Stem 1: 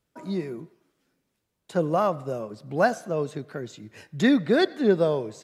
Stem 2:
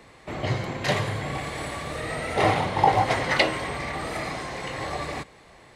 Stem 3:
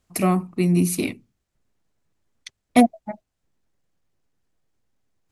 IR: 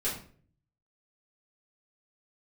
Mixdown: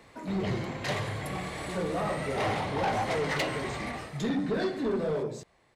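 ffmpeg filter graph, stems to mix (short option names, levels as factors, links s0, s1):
-filter_complex "[0:a]acompressor=threshold=0.1:ratio=6,volume=0.75,asplit=3[s0][s1][s2];[s1]volume=0.398[s3];[1:a]volume=0.596,afade=t=out:st=3.87:d=0.25:silence=0.298538[s4];[2:a]adelay=1100,volume=0.251[s5];[s2]apad=whole_len=282744[s6];[s5][s6]sidechaincompress=threshold=0.00562:ratio=8:attack=16:release=1060[s7];[s0][s7]amix=inputs=2:normalize=0,acompressor=threshold=0.0141:ratio=6,volume=1[s8];[3:a]atrim=start_sample=2205[s9];[s3][s9]afir=irnorm=-1:irlink=0[s10];[s4][s8][s10]amix=inputs=3:normalize=0,asoftclip=type=tanh:threshold=0.0631"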